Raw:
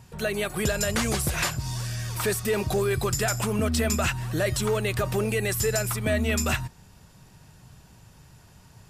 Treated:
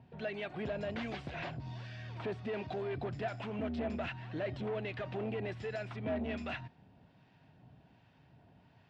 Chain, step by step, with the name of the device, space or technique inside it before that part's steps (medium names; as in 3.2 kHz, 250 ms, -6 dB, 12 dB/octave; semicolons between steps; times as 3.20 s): guitar amplifier with harmonic tremolo (harmonic tremolo 1.3 Hz, depth 50%, crossover 940 Hz; saturation -27 dBFS, distortion -11 dB; cabinet simulation 100–3400 Hz, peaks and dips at 270 Hz +8 dB, 690 Hz +7 dB, 1.2 kHz -6 dB); trim -7 dB